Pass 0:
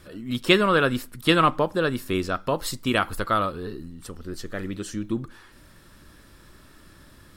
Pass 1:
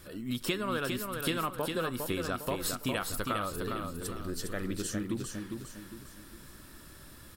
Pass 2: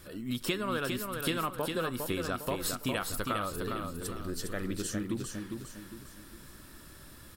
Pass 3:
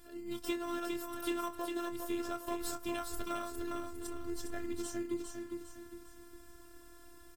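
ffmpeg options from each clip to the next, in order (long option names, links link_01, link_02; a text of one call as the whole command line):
ffmpeg -i in.wav -af "highshelf=frequency=8000:gain=11,acompressor=threshold=-27dB:ratio=6,aecho=1:1:406|812|1218|1624|2030:0.562|0.219|0.0855|0.0334|0.013,volume=-3dB" out.wav
ffmpeg -i in.wav -af anull out.wav
ffmpeg -i in.wav -filter_complex "[0:a]asplit=2[link_01][link_02];[link_02]acrusher=samples=19:mix=1:aa=0.000001,volume=-6.5dB[link_03];[link_01][link_03]amix=inputs=2:normalize=0,afftfilt=real='hypot(re,im)*cos(PI*b)':imag='0':win_size=512:overlap=0.75,asplit=2[link_04][link_05];[link_05]adelay=26,volume=-10dB[link_06];[link_04][link_06]amix=inputs=2:normalize=0,volume=-5dB" out.wav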